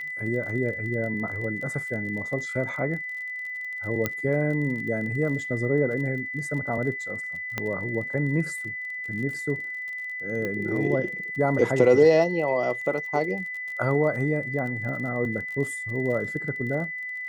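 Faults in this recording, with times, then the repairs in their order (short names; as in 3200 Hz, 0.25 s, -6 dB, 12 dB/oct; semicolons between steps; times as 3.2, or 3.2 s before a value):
crackle 32/s -35 dBFS
tone 2000 Hz -31 dBFS
4.06 pop -10 dBFS
7.58 pop -13 dBFS
10.45 pop -18 dBFS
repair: de-click; notch 2000 Hz, Q 30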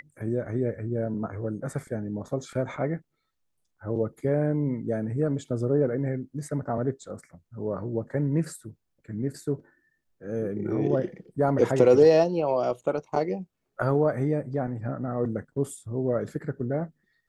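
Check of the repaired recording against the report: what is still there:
none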